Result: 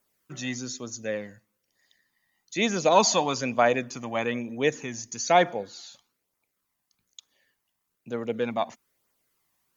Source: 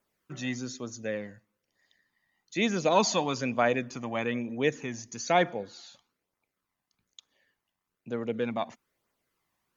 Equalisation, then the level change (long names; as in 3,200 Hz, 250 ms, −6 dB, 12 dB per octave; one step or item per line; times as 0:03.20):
dynamic equaliser 770 Hz, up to +5 dB, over −36 dBFS, Q 0.82
high-shelf EQ 5,000 Hz +10.5 dB
0.0 dB